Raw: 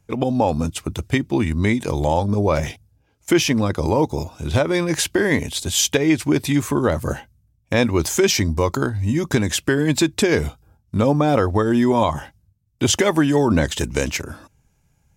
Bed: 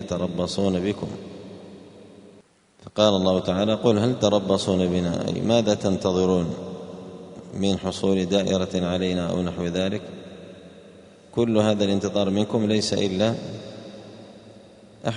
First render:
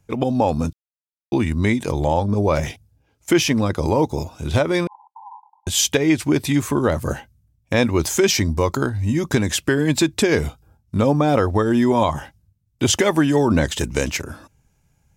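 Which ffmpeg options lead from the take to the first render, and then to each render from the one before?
-filter_complex "[0:a]asettb=1/sr,asplit=3[a][b][c];[a]atrim=end=1.924[d];[b]atrim=start=1.92:end=2.36,asetpts=PTS-STARTPTS,afade=t=in:d=0.004:c=qsin,afade=t=out:st=0.436:d=0.004:c=qsin,highshelf=f=4.3k:g=-6[e];[c]atrim=start=2.356[f];[d][e]acrossfade=d=0.004:c1=hsin:c2=qsin[g];[g][f]acrossfade=d=0.004:c1=qsin:c2=hsin,asettb=1/sr,asplit=3[h][i][j];[h]atrim=end=4.874[k];[i]atrim=start=4.87:end=5.67,asetpts=PTS-STARTPTS,afade=t=in:d=0.004:c=qsin,afade=t=out:st=0.796:d=0.004:c=qsin,asuperpass=centerf=900:order=20:qfactor=3.4[l];[j]atrim=start=5.666[m];[k][l]acrossfade=d=0.004:c1=hsin:c2=qsin[n];[n][m]acrossfade=d=0.004:c1=qsin:c2=hsin,asplit=3[o][p][q];[o]atrim=end=0.73,asetpts=PTS-STARTPTS,afade=t=out:st=0.726:d=0.004:c=hsin[r];[p]atrim=start=0.73:end=1.32,asetpts=PTS-STARTPTS,volume=0[s];[q]atrim=start=1.32,asetpts=PTS-STARTPTS,afade=t=in:d=0.004:c=hsin[t];[r][s][t]concat=n=3:v=0:a=1"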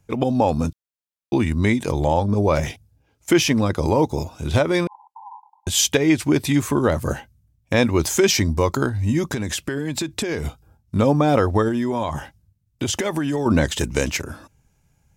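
-filter_complex "[0:a]asettb=1/sr,asplit=3[a][b][c];[a]atrim=end=9.304[d];[b]atrim=start=9.3:end=10.45,asetpts=PTS-STARTPTS,afade=t=in:d=0.004:c=qsin,afade=t=out:st=1.146:d=0.004:c=qsin,acompressor=threshold=-21dB:ratio=6:attack=3.2:release=140:knee=1:detection=peak[e];[c]atrim=start=10.446[f];[d][e]acrossfade=d=0.004:c1=hsin:c2=qsin[g];[g][f]acrossfade=d=0.004:c1=qsin:c2=hsin,asettb=1/sr,asplit=3[h][i][j];[h]atrim=end=11.684[k];[i]atrim=start=11.68:end=13.46,asetpts=PTS-STARTPTS,afade=t=in:d=0.004:c=qsin,afade=t=out:st=1.776:d=0.004:c=qsin,acompressor=threshold=-19dB:ratio=6:attack=3.2:release=140:knee=1:detection=peak[l];[j]atrim=start=13.456[m];[k][l]acrossfade=d=0.004:c1=hsin:c2=qsin[n];[n][m]acrossfade=d=0.004:c1=qsin:c2=hsin"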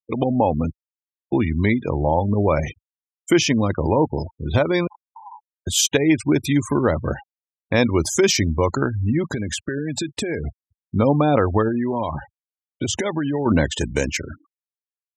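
-af "afftfilt=real='re*gte(hypot(re,im),0.0447)':imag='im*gte(hypot(re,im),0.0447)':win_size=1024:overlap=0.75,highpass=51"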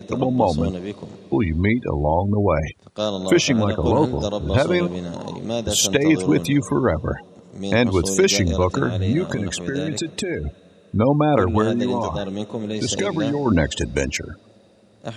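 -filter_complex "[1:a]volume=-5.5dB[a];[0:a][a]amix=inputs=2:normalize=0"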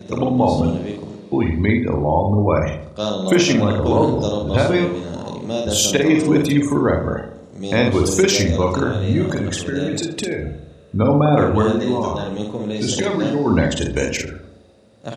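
-filter_complex "[0:a]asplit=2[a][b];[b]adelay=48,volume=-4dB[c];[a][c]amix=inputs=2:normalize=0,asplit=2[d][e];[e]adelay=80,lowpass=f=1.4k:p=1,volume=-8dB,asplit=2[f][g];[g]adelay=80,lowpass=f=1.4k:p=1,volume=0.54,asplit=2[h][i];[i]adelay=80,lowpass=f=1.4k:p=1,volume=0.54,asplit=2[j][k];[k]adelay=80,lowpass=f=1.4k:p=1,volume=0.54,asplit=2[l][m];[m]adelay=80,lowpass=f=1.4k:p=1,volume=0.54,asplit=2[n][o];[o]adelay=80,lowpass=f=1.4k:p=1,volume=0.54[p];[f][h][j][l][n][p]amix=inputs=6:normalize=0[q];[d][q]amix=inputs=2:normalize=0"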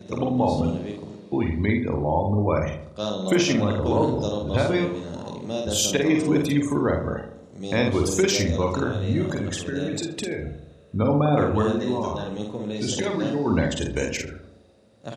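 -af "volume=-5.5dB"

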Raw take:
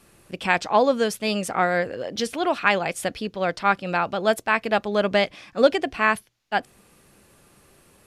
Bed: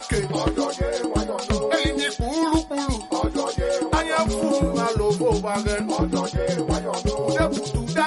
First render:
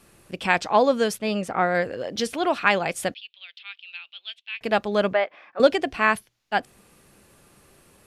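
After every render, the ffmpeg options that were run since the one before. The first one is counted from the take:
-filter_complex "[0:a]asettb=1/sr,asplit=3[a][b][c];[a]atrim=end=1.184[d];[b]atrim=start=1.18:end=1.75,asetpts=PTS-STARTPTS,afade=t=in:d=0.004:c=qsin,afade=t=out:st=0.566:d=0.004:c=qsin,highshelf=f=3.7k:g=-11.5[e];[c]atrim=start=1.746[f];[d][e]acrossfade=d=0.004:c1=hsin:c2=qsin[g];[g][f]acrossfade=d=0.004:c1=qsin:c2=hsin,asettb=1/sr,asplit=3[h][i][j];[h]atrim=end=3.144[k];[i]atrim=start=3.14:end=4.61,asetpts=PTS-STARTPTS,afade=t=in:d=0.004:c=qsin,afade=t=out:st=1.466:d=0.004:c=qsin,asuperpass=centerf=3100:order=4:qfactor=2.7[l];[j]atrim=start=4.606[m];[k][l]acrossfade=d=0.004:c1=hsin:c2=qsin[n];[n][m]acrossfade=d=0.004:c1=qsin:c2=hsin,asettb=1/sr,asplit=3[o][p][q];[o]atrim=end=5.134[r];[p]atrim=start=5.13:end=5.6,asetpts=PTS-STARTPTS,afade=t=in:d=0.004:c=qsin,afade=t=out:st=0.466:d=0.004:c=qsin,asuperpass=centerf=1000:order=4:qfactor=0.64[s];[q]atrim=start=5.596[t];[r][s]acrossfade=d=0.004:c1=hsin:c2=qsin[u];[u][t]acrossfade=d=0.004:c1=qsin:c2=hsin"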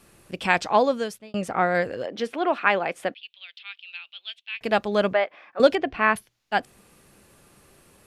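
-filter_complex "[0:a]asettb=1/sr,asplit=3[a][b][c];[a]atrim=end=2.064[d];[b]atrim=start=2.06:end=3.23,asetpts=PTS-STARTPTS,afade=t=in:d=0.004:c=qsin,afade=t=out:st=1.166:d=0.004:c=qsin,acrossover=split=200 3000:gain=0.126 1 0.178[e][f][g];[e][f][g]amix=inputs=3:normalize=0[h];[c]atrim=start=3.226[i];[d][h]acrossfade=d=0.004:c1=hsin:c2=qsin[j];[j][i]acrossfade=d=0.004:c1=qsin:c2=hsin,asettb=1/sr,asplit=3[k][l][m];[k]atrim=end=5.754[n];[l]atrim=start=5.75:end=6.16,asetpts=PTS-STARTPTS,afade=t=in:d=0.004:c=qsin,afade=t=out:st=0.406:d=0.004:c=qsin,lowpass=2.8k[o];[m]atrim=start=6.156[p];[n][o]acrossfade=d=0.004:c1=hsin:c2=qsin[q];[q][p]acrossfade=d=0.004:c1=qsin:c2=hsin,asplit=2[r][s];[r]atrim=end=1.34,asetpts=PTS-STARTPTS,afade=t=out:st=0.73:d=0.61[t];[s]atrim=start=1.34,asetpts=PTS-STARTPTS,afade=t=in:d=0.004:c=hsin[u];[t][u]concat=n=2:v=0:a=1"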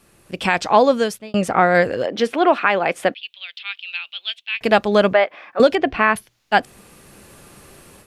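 -af "alimiter=limit=-11.5dB:level=0:latency=1:release=232,dynaudnorm=f=250:g=3:m=10.5dB"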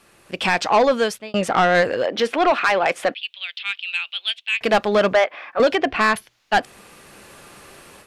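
-filter_complex "[0:a]asplit=2[a][b];[b]highpass=f=720:p=1,volume=9dB,asoftclip=type=tanh:threshold=-2.5dB[c];[a][c]amix=inputs=2:normalize=0,lowpass=f=4.5k:p=1,volume=-6dB,asoftclip=type=tanh:threshold=-9.5dB"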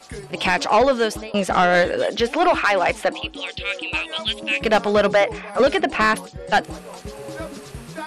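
-filter_complex "[1:a]volume=-11.5dB[a];[0:a][a]amix=inputs=2:normalize=0"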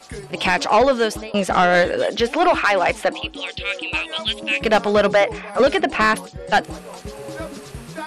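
-af "volume=1dB"

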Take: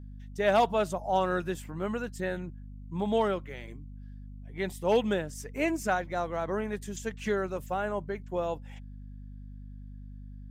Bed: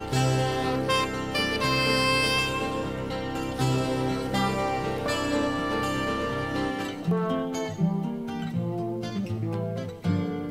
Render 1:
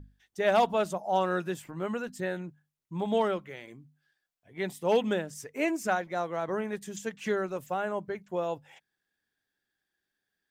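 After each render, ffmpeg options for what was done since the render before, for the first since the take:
-af "bandreject=f=50:t=h:w=6,bandreject=f=100:t=h:w=6,bandreject=f=150:t=h:w=6,bandreject=f=200:t=h:w=6,bandreject=f=250:t=h:w=6"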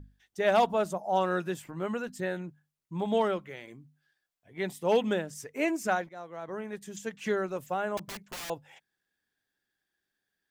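-filter_complex "[0:a]asettb=1/sr,asplit=3[a][b][c];[a]atrim=end=0.664[d];[b]atrim=start=0.66:end=1.17,asetpts=PTS-STARTPTS,afade=t=in:d=0.004:c=qsin,afade=t=out:st=0.506:d=0.004:c=qsin,equalizer=f=3.1k:w=0.94:g=-5[e];[c]atrim=start=1.166[f];[d][e]acrossfade=d=0.004:c1=hsin:c2=qsin[g];[g][f]acrossfade=d=0.004:c1=qsin:c2=hsin,asettb=1/sr,asplit=3[h][i][j];[h]atrim=end=7.974[k];[i]atrim=start=7.97:end=8.5,asetpts=PTS-STARTPTS,afade=t=in:d=0.004:c=qsin,afade=t=out:st=0.526:d=0.004:c=qsin,aeval=exprs='(mod(56.2*val(0)+1,2)-1)/56.2':c=same[l];[j]atrim=start=8.496[m];[k][l]acrossfade=d=0.004:c1=hsin:c2=qsin[n];[n][m]acrossfade=d=0.004:c1=qsin:c2=hsin,asplit=2[o][p];[o]atrim=end=6.09,asetpts=PTS-STARTPTS,afade=t=out:st=6.086:d=0.004:c=hsin:silence=0.188365[q];[p]atrim=start=6.09,asetpts=PTS-STARTPTS,afade=t=in:d=1.2:silence=0.188365[r];[q][r]concat=n=2:v=0:a=1"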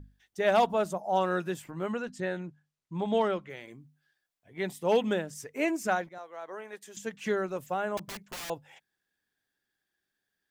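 -filter_complex "[0:a]asettb=1/sr,asplit=3[a][b][c];[a]atrim=end=1.924[d];[b]atrim=start=1.92:end=3.5,asetpts=PTS-STARTPTS,afade=t=in:d=0.004:c=qsin,afade=t=out:st=1.576:d=0.004:c=qsin,lowpass=7.5k[e];[c]atrim=start=3.496[f];[d][e]acrossfade=d=0.004:c1=hsin:c2=qsin[g];[g][f]acrossfade=d=0.004:c1=qsin:c2=hsin,asettb=1/sr,asplit=3[h][i][j];[h]atrim=end=6.184[k];[i]atrim=start=6.18:end=6.97,asetpts=PTS-STARTPTS,afade=t=in:d=0.004:c=qsin,afade=t=out:st=0.786:d=0.004:c=qsin,highpass=480[l];[j]atrim=start=6.966[m];[k][l]acrossfade=d=0.004:c1=hsin:c2=qsin[n];[n][m]acrossfade=d=0.004:c1=qsin:c2=hsin"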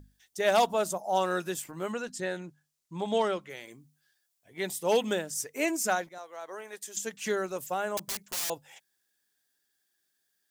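-af "bass=f=250:g=-5,treble=f=4k:g=12"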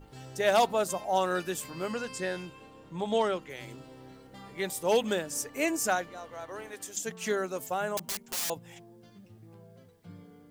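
-filter_complex "[1:a]volume=-23dB[a];[0:a][a]amix=inputs=2:normalize=0"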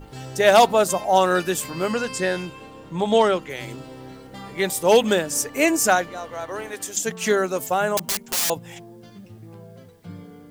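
-af "volume=10dB"

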